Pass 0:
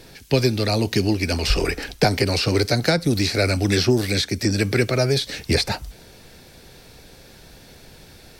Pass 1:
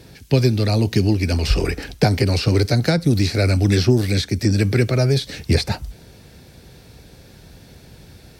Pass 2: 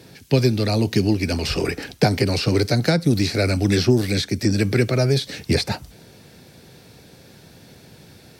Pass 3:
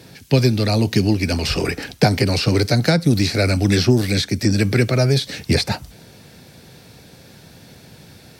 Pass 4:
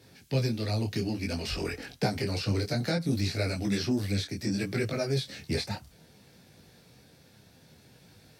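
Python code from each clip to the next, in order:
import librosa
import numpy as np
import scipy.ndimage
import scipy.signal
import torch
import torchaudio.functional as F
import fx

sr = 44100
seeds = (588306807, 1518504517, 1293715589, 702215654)

y1 = scipy.signal.sosfilt(scipy.signal.butter(2, 57.0, 'highpass', fs=sr, output='sos'), x)
y1 = fx.low_shelf(y1, sr, hz=230.0, db=11.0)
y1 = F.gain(torch.from_numpy(y1), -2.5).numpy()
y2 = scipy.signal.sosfilt(scipy.signal.butter(2, 120.0, 'highpass', fs=sr, output='sos'), y1)
y3 = fx.peak_eq(y2, sr, hz=380.0, db=-3.0, octaves=0.77)
y3 = F.gain(torch.from_numpy(y3), 3.0).numpy()
y4 = fx.detune_double(y3, sr, cents=21)
y4 = F.gain(torch.from_numpy(y4), -9.0).numpy()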